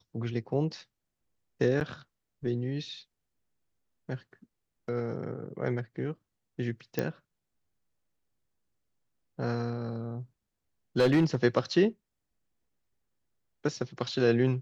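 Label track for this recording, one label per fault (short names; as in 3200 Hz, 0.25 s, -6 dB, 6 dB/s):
1.800000	1.810000	gap 9.4 ms
6.990000	6.990000	pop -15 dBFS
10.980000	11.350000	clipped -18.5 dBFS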